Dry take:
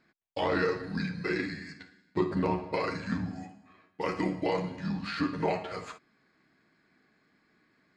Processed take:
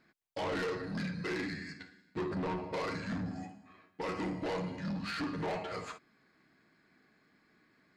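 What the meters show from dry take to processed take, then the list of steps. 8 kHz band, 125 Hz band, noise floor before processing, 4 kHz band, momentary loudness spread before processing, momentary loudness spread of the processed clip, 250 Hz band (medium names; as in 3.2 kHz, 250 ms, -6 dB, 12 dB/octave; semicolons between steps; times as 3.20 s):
no reading, -4.5 dB, -70 dBFS, -3.0 dB, 14 LU, 11 LU, -5.0 dB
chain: saturation -32 dBFS, distortion -8 dB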